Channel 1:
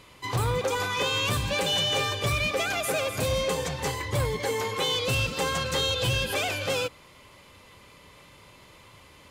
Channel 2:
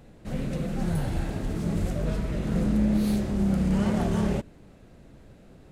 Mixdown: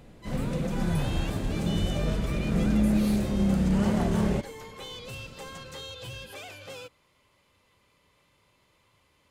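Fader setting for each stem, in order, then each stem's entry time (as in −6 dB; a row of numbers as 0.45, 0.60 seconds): −14.5, 0.0 decibels; 0.00, 0.00 seconds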